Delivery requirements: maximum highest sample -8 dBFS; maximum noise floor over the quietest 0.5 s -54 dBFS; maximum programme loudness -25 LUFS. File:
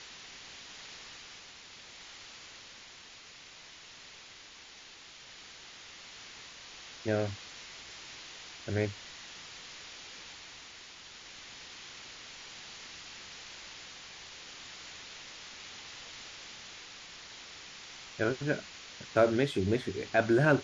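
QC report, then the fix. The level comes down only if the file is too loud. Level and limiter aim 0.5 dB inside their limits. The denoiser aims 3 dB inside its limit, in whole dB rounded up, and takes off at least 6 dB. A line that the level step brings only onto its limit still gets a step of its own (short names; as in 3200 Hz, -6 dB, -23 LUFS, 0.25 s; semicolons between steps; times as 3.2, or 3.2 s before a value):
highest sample -13.0 dBFS: OK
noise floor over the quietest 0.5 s -52 dBFS: fail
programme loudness -37.5 LUFS: OK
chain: denoiser 6 dB, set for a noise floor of -52 dBFS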